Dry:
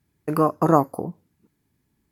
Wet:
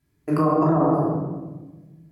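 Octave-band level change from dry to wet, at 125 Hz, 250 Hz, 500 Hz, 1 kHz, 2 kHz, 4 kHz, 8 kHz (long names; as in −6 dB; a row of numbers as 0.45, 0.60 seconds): +3.5 dB, +3.5 dB, 0.0 dB, −1.0 dB, −2.0 dB, can't be measured, below −10 dB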